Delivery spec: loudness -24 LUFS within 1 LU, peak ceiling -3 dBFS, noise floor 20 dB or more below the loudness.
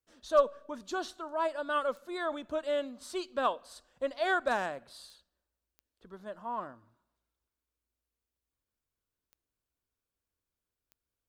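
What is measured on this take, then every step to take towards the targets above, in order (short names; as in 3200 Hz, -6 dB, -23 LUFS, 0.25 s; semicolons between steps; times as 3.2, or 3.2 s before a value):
clicks 5; loudness -33.0 LUFS; peak -13.5 dBFS; loudness target -24.0 LUFS
-> de-click; gain +9 dB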